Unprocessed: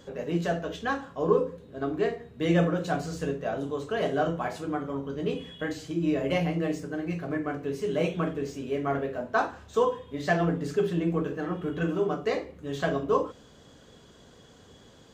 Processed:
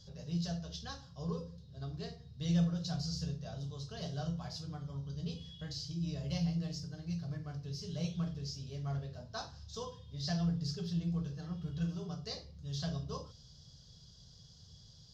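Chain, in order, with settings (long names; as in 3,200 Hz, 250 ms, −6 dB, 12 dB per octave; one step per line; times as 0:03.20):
drawn EQ curve 150 Hz 0 dB, 290 Hz −26 dB, 670 Hz −19 dB, 2,300 Hz −22 dB, 5,100 Hz +9 dB, 8,100 Hz −16 dB
level +1 dB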